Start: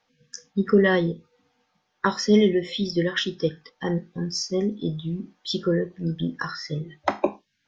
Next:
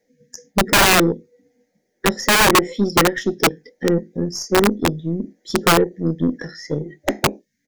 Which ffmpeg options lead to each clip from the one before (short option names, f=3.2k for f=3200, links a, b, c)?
-af "firequalizer=gain_entry='entry(130,0);entry(230,10);entry(510,11);entry(1100,-27);entry(1900,5);entry(2700,-14);entry(6800,6);entry(9900,10)':delay=0.05:min_phase=1,aeval=exprs='(mod(2.37*val(0)+1,2)-1)/2.37':c=same,aeval=exprs='0.447*(cos(1*acos(clip(val(0)/0.447,-1,1)))-cos(1*PI/2))+0.0224*(cos(6*acos(clip(val(0)/0.447,-1,1)))-cos(6*PI/2))':c=same"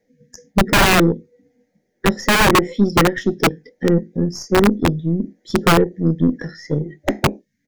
-af "bass=f=250:g=6,treble=f=4k:g=-5"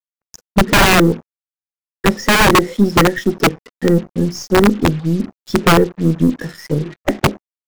-af "acrusher=bits=5:mix=0:aa=0.5,volume=2.5dB"